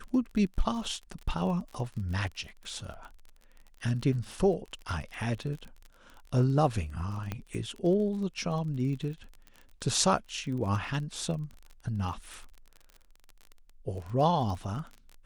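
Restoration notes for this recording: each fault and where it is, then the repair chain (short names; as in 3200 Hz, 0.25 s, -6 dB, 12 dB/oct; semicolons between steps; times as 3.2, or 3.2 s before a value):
crackle 35/s -38 dBFS
7.32 pop -20 dBFS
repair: de-click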